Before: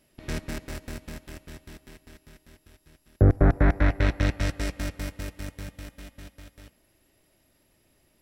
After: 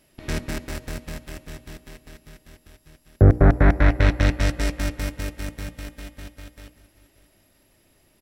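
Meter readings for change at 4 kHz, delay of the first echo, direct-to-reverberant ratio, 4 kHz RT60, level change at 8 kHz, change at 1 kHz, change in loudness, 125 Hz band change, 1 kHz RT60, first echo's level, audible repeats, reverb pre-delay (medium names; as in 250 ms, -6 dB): +5.0 dB, 585 ms, no reverb, no reverb, +5.0 dB, +5.0 dB, +5.0 dB, +5.0 dB, no reverb, -18.0 dB, 2, no reverb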